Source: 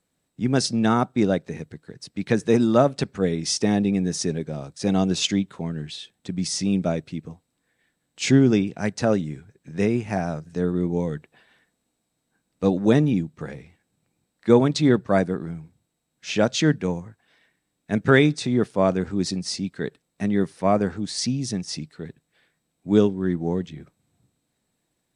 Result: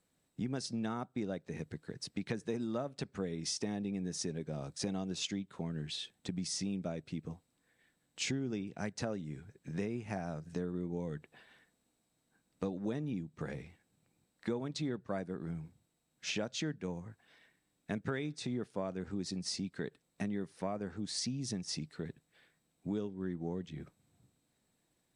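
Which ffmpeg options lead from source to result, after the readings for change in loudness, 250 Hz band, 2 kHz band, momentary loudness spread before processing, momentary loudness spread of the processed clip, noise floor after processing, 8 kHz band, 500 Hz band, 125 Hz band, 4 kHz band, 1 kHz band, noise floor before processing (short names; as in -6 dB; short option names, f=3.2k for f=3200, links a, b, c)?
-16.5 dB, -16.5 dB, -16.0 dB, 17 LU, 8 LU, -79 dBFS, -11.0 dB, -18.0 dB, -15.5 dB, -11.5 dB, -18.0 dB, -77 dBFS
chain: -af "acompressor=threshold=-32dB:ratio=6,volume=-3dB"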